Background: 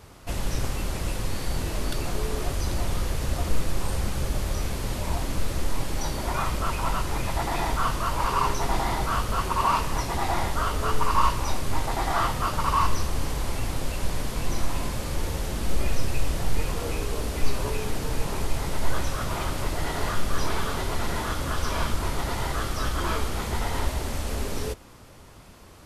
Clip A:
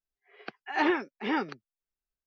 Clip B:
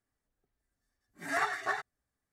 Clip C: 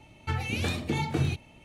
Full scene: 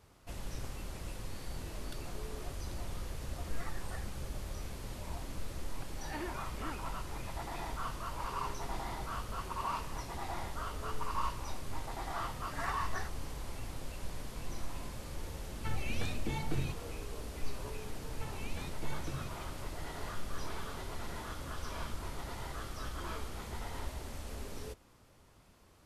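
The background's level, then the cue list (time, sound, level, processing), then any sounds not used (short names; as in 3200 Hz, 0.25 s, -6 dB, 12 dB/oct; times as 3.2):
background -14 dB
2.24 add B -13.5 dB + cascading flanger falling 1.4 Hz
5.34 add A -16.5 dB
11.27 add B -9.5 dB
15.37 add C -9.5 dB
17.93 add C -16 dB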